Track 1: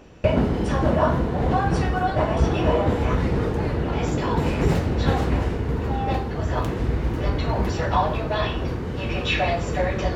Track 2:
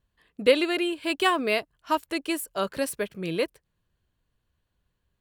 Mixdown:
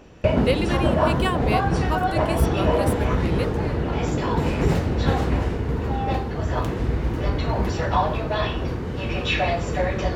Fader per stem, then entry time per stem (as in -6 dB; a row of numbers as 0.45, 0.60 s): 0.0, -3.0 dB; 0.00, 0.00 s